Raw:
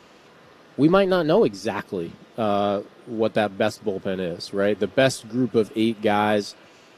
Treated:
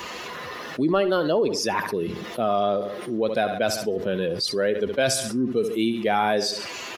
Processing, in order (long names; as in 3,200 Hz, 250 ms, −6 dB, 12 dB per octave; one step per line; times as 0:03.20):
spectral dynamics exaggerated over time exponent 1.5
bass and treble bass −7 dB, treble +1 dB
repeating echo 69 ms, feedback 32%, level −18 dB
envelope flattener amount 70%
level −3.5 dB